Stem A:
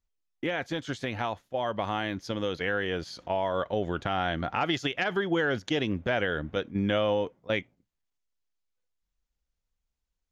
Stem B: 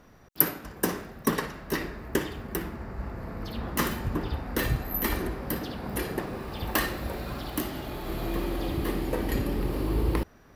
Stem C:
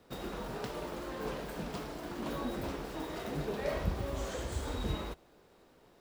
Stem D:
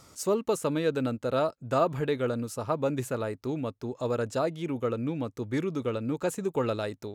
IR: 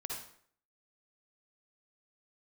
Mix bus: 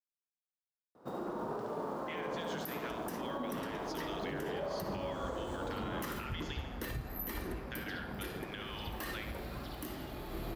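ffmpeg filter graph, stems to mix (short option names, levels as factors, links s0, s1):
-filter_complex "[0:a]highpass=f=1200:w=0.5412,highpass=f=1200:w=1.3066,acompressor=threshold=0.0112:ratio=6,adelay=1650,volume=0.841,asplit=3[s0][s1][s2];[s0]atrim=end=6.62,asetpts=PTS-STARTPTS,afade=t=out:st=6.616:d=0.004:c=hsin[s3];[s1]atrim=start=6.62:end=7.52,asetpts=PTS-STARTPTS,volume=0[s4];[s2]atrim=start=7.52,asetpts=PTS-STARTPTS,afade=t=in:d=0.004:c=hsin[s5];[s3][s4][s5]concat=n=3:v=0:a=1,asplit=2[s6][s7];[s7]volume=0.398[s8];[1:a]adelay=2250,volume=0.398[s9];[2:a]highpass=150,highshelf=f=1600:t=q:w=1.5:g=-12,adelay=950,volume=1.12,asplit=2[s10][s11];[s11]volume=0.668[s12];[s8][s12]amix=inputs=2:normalize=0,aecho=0:1:70|140|210|280|350|420|490|560|630:1|0.59|0.348|0.205|0.121|0.0715|0.0422|0.0249|0.0147[s13];[s6][s9][s10][s13]amix=inputs=4:normalize=0,alimiter=level_in=1.88:limit=0.0631:level=0:latency=1:release=108,volume=0.531"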